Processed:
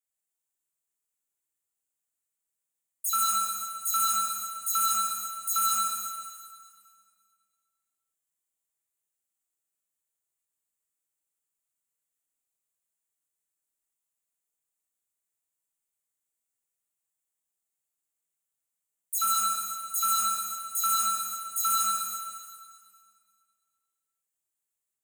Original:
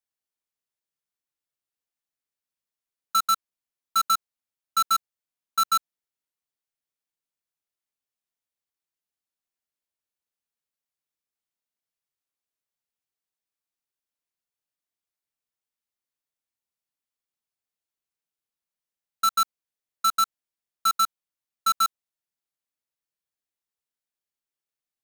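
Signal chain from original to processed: spectral delay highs early, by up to 0.102 s; resonant high shelf 6200 Hz +6.5 dB, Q 3; Schroeder reverb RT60 2 s, combs from 27 ms, DRR -4 dB; gain -6.5 dB

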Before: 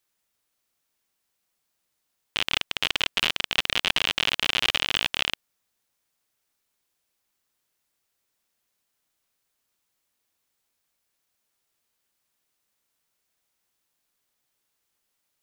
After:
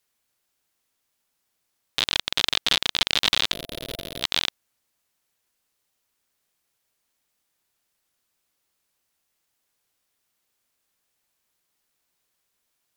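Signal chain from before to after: spectral gain 4.2–5.03, 570–8300 Hz -16 dB; varispeed +19%; gain +2.5 dB

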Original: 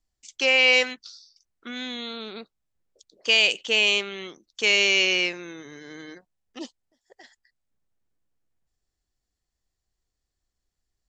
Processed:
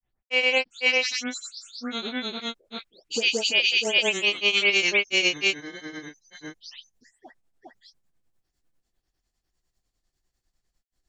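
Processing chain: spectral delay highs late, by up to 0.366 s; limiter -18 dBFS, peak gain reduction 10.5 dB; grains 0.147 s, grains 10/s, spray 0.538 s, pitch spread up and down by 0 st; gain +7.5 dB

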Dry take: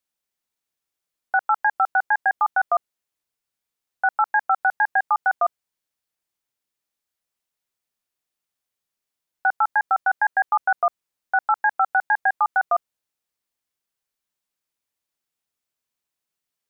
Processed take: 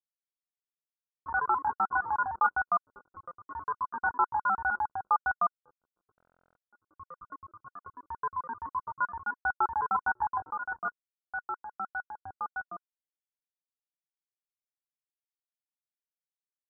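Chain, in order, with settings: hard clip -16.5 dBFS, distortion -13 dB; HPF 390 Hz 6 dB/oct; comb 0.9 ms, depth 70%; echoes that change speed 0.156 s, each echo +3 st, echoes 3, each echo -6 dB; bell 980 Hz +4.5 dB 0.79 oct, from 10.4 s -7.5 dB, from 12.6 s -14.5 dB; feedback echo 0.547 s, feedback 44%, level -21 dB; crossover distortion -31.5 dBFS; rippled Chebyshev low-pass 1500 Hz, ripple 6 dB; stuck buffer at 6.16, samples 1024, times 16; gain -2.5 dB

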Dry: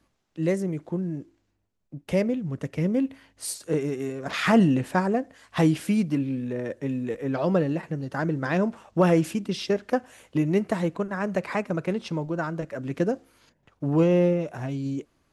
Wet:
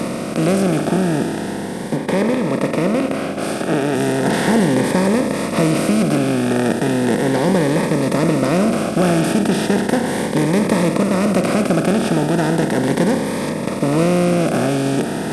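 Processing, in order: per-bin compression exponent 0.2; 1.96–3.95 tone controls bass -4 dB, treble -6 dB; soft clip 0 dBFS, distortion -30 dB; cascading phaser rising 0.36 Hz

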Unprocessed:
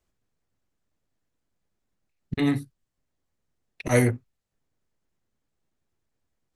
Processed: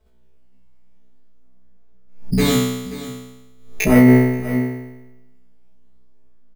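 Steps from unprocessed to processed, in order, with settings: LPF 3800 Hz 6 dB/oct; tilt shelf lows +6.5 dB; comb 4.6 ms, depth 86%; dynamic EQ 2500 Hz, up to +7 dB, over -41 dBFS, Q 0.94; in parallel at -2 dB: compressor, threshold -23 dBFS, peak gain reduction 14 dB; on the sum: decimation with a swept rate 10×, swing 160% 0.42 Hz; soft clip -4 dBFS, distortion -19 dB; resonator 63 Hz, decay 1 s, harmonics all, mix 100%; on a send: echo 0.531 s -15 dB; on the sum: maximiser +19 dB; backwards sustainer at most 88 dB/s; gain -1 dB

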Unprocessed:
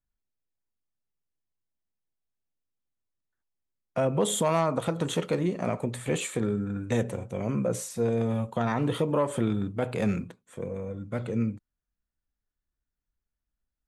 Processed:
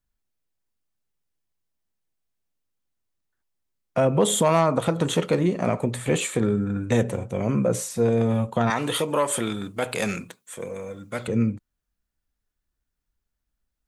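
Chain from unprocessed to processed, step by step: 8.7–11.28 tilt +3.5 dB/oct; gain +5.5 dB

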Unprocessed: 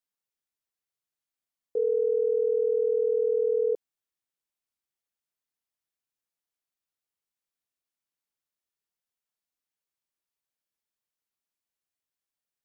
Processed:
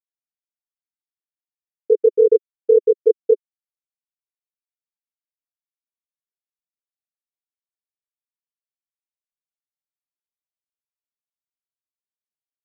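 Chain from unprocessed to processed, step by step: random spectral dropouts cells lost 79%; crossover distortion -59 dBFS; resonant low shelf 550 Hz +11.5 dB, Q 3

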